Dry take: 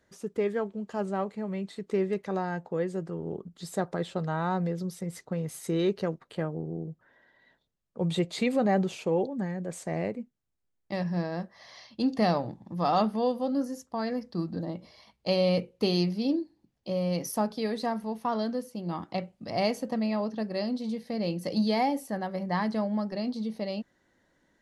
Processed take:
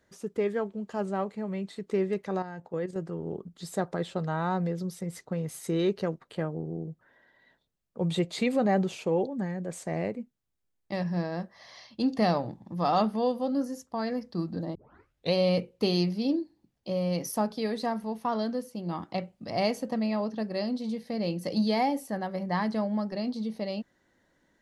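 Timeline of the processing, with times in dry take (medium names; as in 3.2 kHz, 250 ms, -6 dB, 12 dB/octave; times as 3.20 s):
2.42–2.96 s: level held to a coarse grid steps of 10 dB
14.75 s: tape start 0.59 s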